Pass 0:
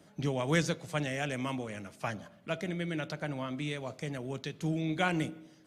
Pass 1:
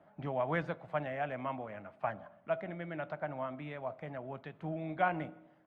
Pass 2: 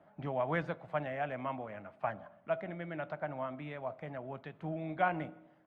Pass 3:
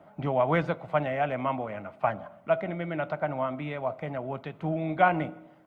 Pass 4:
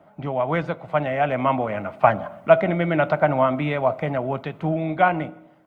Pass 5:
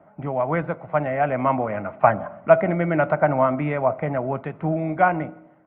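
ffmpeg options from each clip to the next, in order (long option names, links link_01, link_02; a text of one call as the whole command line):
ffmpeg -i in.wav -af "firequalizer=gain_entry='entry(450,0);entry(640,12);entry(5900,-28)':delay=0.05:min_phase=1,volume=-8dB" out.wav
ffmpeg -i in.wav -af anull out.wav
ffmpeg -i in.wav -af "bandreject=frequency=1700:width=8.7,volume=9dB" out.wav
ffmpeg -i in.wav -af "dynaudnorm=framelen=380:gausssize=7:maxgain=12.5dB,volume=1dB" out.wav
ffmpeg -i in.wav -af "lowpass=frequency=2200:width=0.5412,lowpass=frequency=2200:width=1.3066" out.wav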